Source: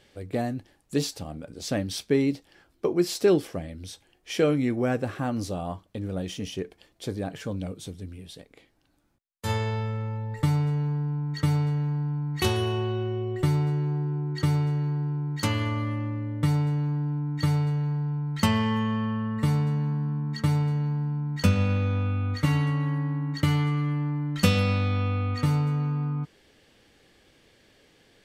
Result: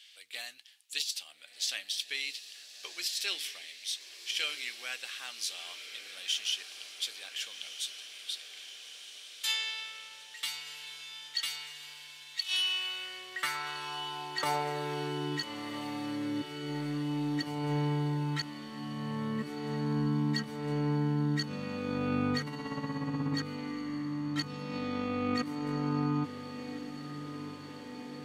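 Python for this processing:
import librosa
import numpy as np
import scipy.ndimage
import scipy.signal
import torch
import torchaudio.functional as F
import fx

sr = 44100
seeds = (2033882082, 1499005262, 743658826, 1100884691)

y = fx.filter_sweep_highpass(x, sr, from_hz=3100.0, to_hz=290.0, start_s=12.61, end_s=15.59, q=2.0)
y = fx.over_compress(y, sr, threshold_db=-33.0, ratio=-0.5)
y = fx.echo_diffused(y, sr, ms=1374, feedback_pct=70, wet_db=-11)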